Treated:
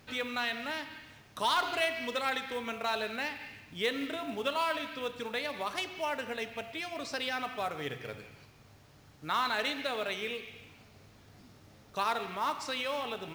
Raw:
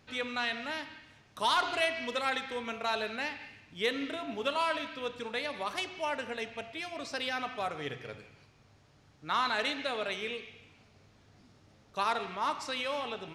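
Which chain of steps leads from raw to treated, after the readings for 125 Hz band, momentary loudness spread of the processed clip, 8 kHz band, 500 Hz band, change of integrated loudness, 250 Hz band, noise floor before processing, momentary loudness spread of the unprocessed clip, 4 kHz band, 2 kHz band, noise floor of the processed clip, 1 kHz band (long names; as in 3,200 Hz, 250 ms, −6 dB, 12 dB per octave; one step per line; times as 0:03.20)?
+1.5 dB, 12 LU, +1.0 dB, 0.0 dB, −0.5 dB, +0.5 dB, −63 dBFS, 12 LU, −0.5 dB, 0.0 dB, −59 dBFS, −0.5 dB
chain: in parallel at 0 dB: downward compressor 6 to 1, threshold −44 dBFS, peak gain reduction 18.5 dB
on the sum: log-companded quantiser 6 bits
level −2 dB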